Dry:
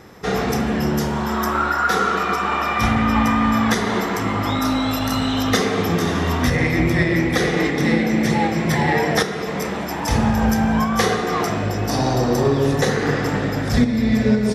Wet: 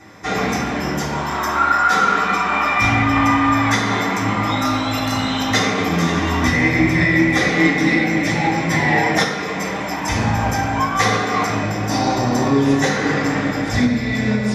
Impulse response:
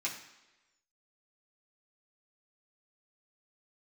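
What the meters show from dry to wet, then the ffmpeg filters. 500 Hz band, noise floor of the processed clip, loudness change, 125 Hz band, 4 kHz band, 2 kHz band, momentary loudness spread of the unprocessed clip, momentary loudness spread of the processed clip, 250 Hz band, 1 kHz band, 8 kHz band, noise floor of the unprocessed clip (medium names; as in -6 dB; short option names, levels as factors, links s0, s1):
-1.5 dB, -24 dBFS, +2.0 dB, 0.0 dB, +2.5 dB, +5.0 dB, 4 LU, 7 LU, +0.5 dB, +3.0 dB, +2.0 dB, -25 dBFS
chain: -filter_complex "[0:a]highshelf=f=9300:g=-6[s0];[1:a]atrim=start_sample=2205,asetrate=41454,aresample=44100[s1];[s0][s1]afir=irnorm=-1:irlink=0"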